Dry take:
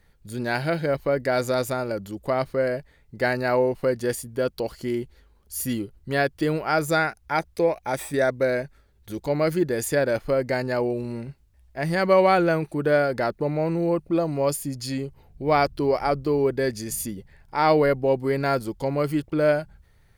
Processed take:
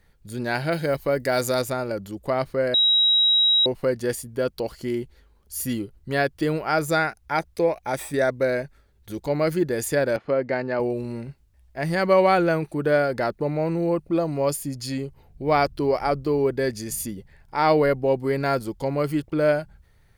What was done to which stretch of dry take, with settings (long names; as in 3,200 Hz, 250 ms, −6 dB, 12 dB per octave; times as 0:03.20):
0:00.72–0:01.62: high-shelf EQ 5,600 Hz +11 dB
0:02.74–0:03.66: beep over 3,840 Hz −15 dBFS
0:10.16–0:10.80: band-pass filter 150–3,000 Hz